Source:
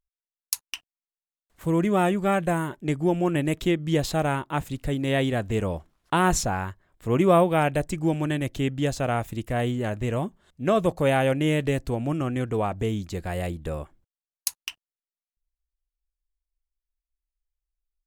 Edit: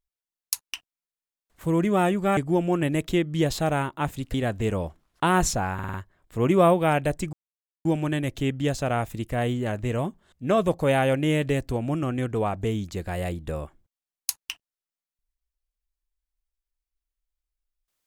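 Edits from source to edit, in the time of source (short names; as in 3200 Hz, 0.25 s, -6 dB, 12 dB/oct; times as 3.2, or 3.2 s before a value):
2.37–2.9 cut
4.87–5.24 cut
6.64 stutter 0.05 s, 5 plays
8.03 insert silence 0.52 s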